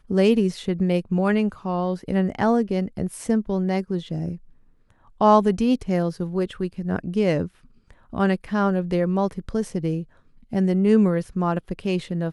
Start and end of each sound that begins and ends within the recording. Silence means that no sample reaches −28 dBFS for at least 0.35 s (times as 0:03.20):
0:05.21–0:07.47
0:08.13–0:10.02